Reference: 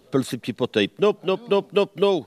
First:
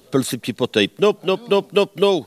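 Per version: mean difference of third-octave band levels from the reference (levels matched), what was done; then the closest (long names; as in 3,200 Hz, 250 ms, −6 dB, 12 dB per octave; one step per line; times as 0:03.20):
1.5 dB: high-shelf EQ 4,600 Hz +8.5 dB
level +3 dB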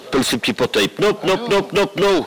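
9.0 dB: mid-hump overdrive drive 32 dB, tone 4,600 Hz, clips at −5 dBFS
level −2.5 dB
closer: first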